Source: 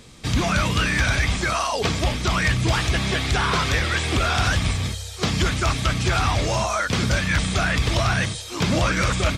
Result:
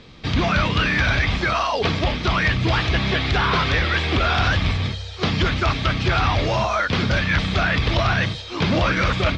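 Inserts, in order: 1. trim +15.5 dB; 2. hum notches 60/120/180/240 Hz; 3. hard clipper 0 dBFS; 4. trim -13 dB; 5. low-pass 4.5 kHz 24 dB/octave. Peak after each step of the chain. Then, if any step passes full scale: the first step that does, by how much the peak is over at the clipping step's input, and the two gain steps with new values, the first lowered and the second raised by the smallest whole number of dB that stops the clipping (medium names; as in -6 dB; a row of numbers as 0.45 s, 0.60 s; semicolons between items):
+4.0 dBFS, +6.0 dBFS, 0.0 dBFS, -13.0 dBFS, -11.5 dBFS; step 1, 6.0 dB; step 1 +9.5 dB, step 4 -7 dB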